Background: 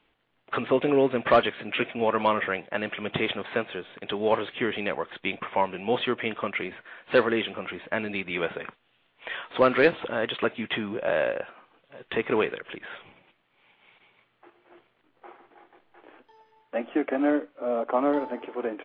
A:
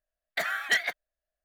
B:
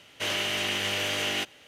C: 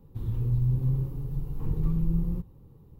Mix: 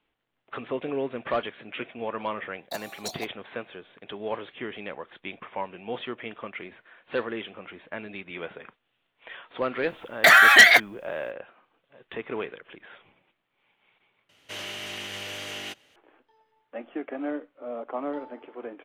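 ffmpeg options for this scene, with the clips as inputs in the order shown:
ffmpeg -i bed.wav -i cue0.wav -i cue1.wav -filter_complex "[1:a]asplit=2[link_01][link_02];[0:a]volume=-8dB[link_03];[link_01]asuperstop=centerf=2000:order=20:qfactor=0.76[link_04];[link_02]alimiter=level_in=26.5dB:limit=-1dB:release=50:level=0:latency=1[link_05];[link_03]asplit=2[link_06][link_07];[link_06]atrim=end=14.294[link_08];[2:a]atrim=end=1.67,asetpts=PTS-STARTPTS,volume=-7.5dB[link_09];[link_07]atrim=start=15.956[link_10];[link_04]atrim=end=1.44,asetpts=PTS-STARTPTS,volume=-0.5dB,afade=type=in:duration=0.004:curve=hsin,afade=type=out:start_time=1.436:duration=0.004:curve=hsin,adelay=2340[link_11];[link_05]atrim=end=1.44,asetpts=PTS-STARTPTS,volume=-4dB,afade=type=in:duration=0.004:curve=hsin,afade=type=out:start_time=1.436:duration=0.004:curve=hsin,adelay=9870[link_12];[link_08][link_09]acrossfade=duration=0.004:curve1=hsin:curve2=hsin[link_13];[link_13][link_10]acrossfade=duration=0.004:curve1=hsin:curve2=hsin[link_14];[link_14][link_11][link_12]amix=inputs=3:normalize=0" out.wav

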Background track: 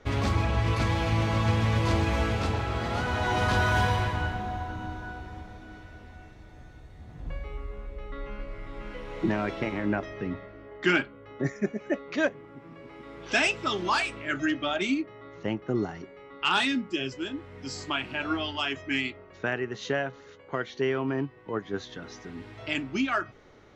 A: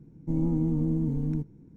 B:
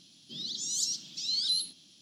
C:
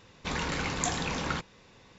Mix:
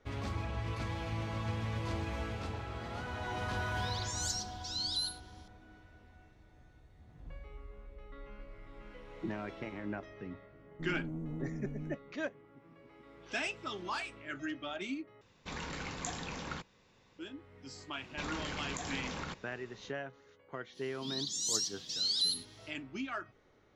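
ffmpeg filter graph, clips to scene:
ffmpeg -i bed.wav -i cue0.wav -i cue1.wav -i cue2.wav -filter_complex "[2:a]asplit=2[link_01][link_02];[3:a]asplit=2[link_03][link_04];[0:a]volume=-12dB[link_05];[link_01]acontrast=63[link_06];[1:a]asoftclip=type=tanh:threshold=-21.5dB[link_07];[link_04]acompressor=threshold=-34dB:ratio=6:attack=3.2:release=140:knee=1:detection=peak[link_08];[link_05]asplit=2[link_09][link_10];[link_09]atrim=end=15.214[link_11];[link_03]atrim=end=1.98,asetpts=PTS-STARTPTS,volume=-9.5dB[link_12];[link_10]atrim=start=17.186[link_13];[link_06]atrim=end=2.01,asetpts=PTS-STARTPTS,volume=-12.5dB,afade=type=in:duration=0.004:curve=hsin,afade=type=out:start_time=2.006:duration=0.004:curve=hsin,adelay=3470[link_14];[link_07]atrim=end=1.76,asetpts=PTS-STARTPTS,volume=-12dB,afade=type=in:duration=0.004:curve=hsin,afade=type=out:start_time=1.756:duration=0.004:curve=hsin,adelay=10520[link_15];[link_08]atrim=end=1.98,asetpts=PTS-STARTPTS,volume=-2.5dB,afade=type=in:duration=0.004:curve=hsin,afade=type=out:start_time=1.976:duration=0.004:curve=hsin,adelay=17930[link_16];[link_02]atrim=end=2.01,asetpts=PTS-STARTPTS,volume=-2dB,afade=type=in:duration=0.05,afade=type=out:start_time=1.96:duration=0.05,adelay=20720[link_17];[link_11][link_12]acrossfade=duration=0.004:curve1=hsin:curve2=hsin[link_18];[link_18][link_13]acrossfade=duration=0.004:curve1=hsin:curve2=hsin[link_19];[link_19][link_14][link_15][link_16][link_17]amix=inputs=5:normalize=0" out.wav

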